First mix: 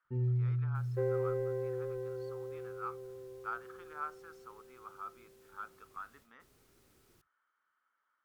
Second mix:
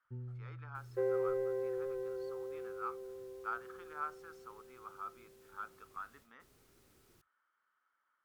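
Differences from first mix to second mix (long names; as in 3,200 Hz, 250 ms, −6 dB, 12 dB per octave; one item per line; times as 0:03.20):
first sound −11.0 dB
reverb: off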